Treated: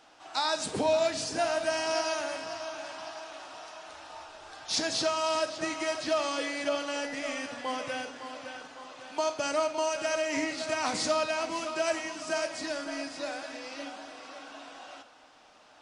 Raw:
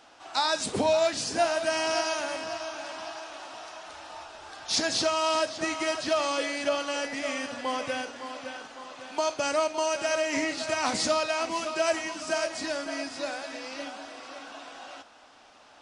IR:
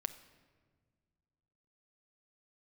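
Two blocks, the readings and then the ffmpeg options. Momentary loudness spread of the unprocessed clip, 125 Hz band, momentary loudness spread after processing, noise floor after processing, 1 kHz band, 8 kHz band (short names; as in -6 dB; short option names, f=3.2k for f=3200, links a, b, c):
17 LU, -2.5 dB, 17 LU, -57 dBFS, -3.0 dB, -3.0 dB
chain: -filter_complex "[1:a]atrim=start_sample=2205[a];[0:a][a]afir=irnorm=-1:irlink=0,volume=-2dB"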